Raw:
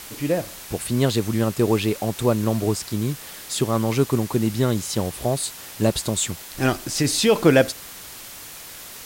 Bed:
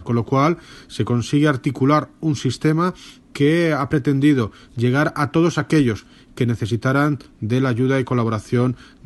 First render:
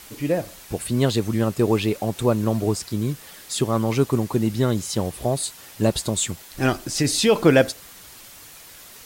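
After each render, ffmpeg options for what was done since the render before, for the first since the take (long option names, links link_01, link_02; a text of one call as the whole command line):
ffmpeg -i in.wav -af "afftdn=noise_reduction=6:noise_floor=-39" out.wav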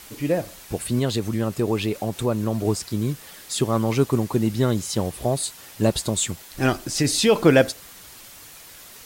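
ffmpeg -i in.wav -filter_complex "[0:a]asettb=1/sr,asplit=3[link_01][link_02][link_03];[link_01]atrim=end=0.994[link_04];[link_02]atrim=start=0.99:end=2.65,asetpts=PTS-STARTPTS,afade=type=in:duration=0.004:curve=qsin,afade=type=out:start_time=1.656:duration=0.004:curve=qsin,acompressor=threshold=-23dB:ratio=1.5:attack=3.2:release=140:knee=1:detection=peak[link_05];[link_03]atrim=start=2.646[link_06];[link_04][link_05]acrossfade=duration=0.004:curve1=hsin:curve2=qsin[link_07];[link_07][link_06]acrossfade=duration=0.004:curve1=qsin:curve2=hsin" out.wav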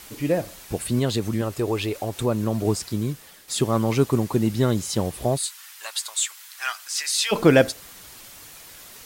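ffmpeg -i in.wav -filter_complex "[0:a]asettb=1/sr,asplit=3[link_01][link_02][link_03];[link_01]atrim=end=1.414[link_04];[link_02]atrim=start=1.41:end=2.18,asetpts=PTS-STARTPTS,afade=type=in:duration=0.004:curve=qsin,afade=type=out:start_time=0.766:duration=0.004:curve=qsin,equalizer=frequency=190:width_type=o:width=0.66:gain=-11[link_05];[link_03]atrim=start=2.176[link_06];[link_04][link_05]acrossfade=duration=0.004:curve1=hsin:curve2=qsin[link_07];[link_07][link_06]acrossfade=duration=0.004:curve1=qsin:curve2=hsin,asplit=3[link_08][link_09][link_10];[link_08]afade=type=out:start_time=5.37:duration=0.02[link_11];[link_09]highpass=frequency=1100:width=0.5412,highpass=frequency=1100:width=1.3066,afade=type=in:start_time=5.37:duration=0.02,afade=type=out:start_time=7.31:duration=0.02[link_12];[link_10]afade=type=in:start_time=7.31:duration=0.02[link_13];[link_11][link_12][link_13]amix=inputs=3:normalize=0,asplit=2[link_14][link_15];[link_14]atrim=end=3.48,asetpts=PTS-STARTPTS,afade=type=out:start_time=2.88:duration=0.6:silence=0.375837[link_16];[link_15]atrim=start=3.48,asetpts=PTS-STARTPTS,afade=type=in:duration=0.004:curve=hsin:silence=0.375837[link_17];[link_16][link_17]concat=n=2:v=0:a=1" out.wav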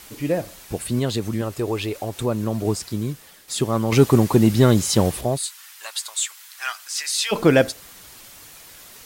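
ffmpeg -i in.wav -filter_complex "[0:a]asettb=1/sr,asplit=3[link_01][link_02][link_03];[link_01]atrim=end=3.924[link_04];[link_02]atrim=start=3.92:end=5.21,asetpts=PTS-STARTPTS,afade=type=in:duration=0.004:curve=qsin,afade=type=out:start_time=1.286:duration=0.004:curve=qsin,acontrast=80[link_05];[link_03]atrim=start=5.206[link_06];[link_04][link_05]acrossfade=duration=0.004:curve1=hsin:curve2=qsin[link_07];[link_07][link_06]acrossfade=duration=0.004:curve1=qsin:curve2=hsin" out.wav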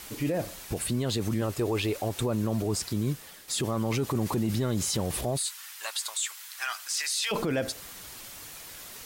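ffmpeg -i in.wav -af "acompressor=threshold=-17dB:ratio=6,alimiter=limit=-20.5dB:level=0:latency=1:release=17" out.wav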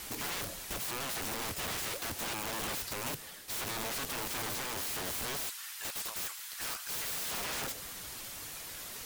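ffmpeg -i in.wav -af "aeval=exprs='(mod(39.8*val(0)+1,2)-1)/39.8':channel_layout=same" out.wav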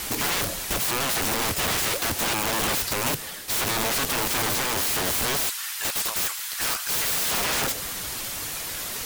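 ffmpeg -i in.wav -af "volume=12dB" out.wav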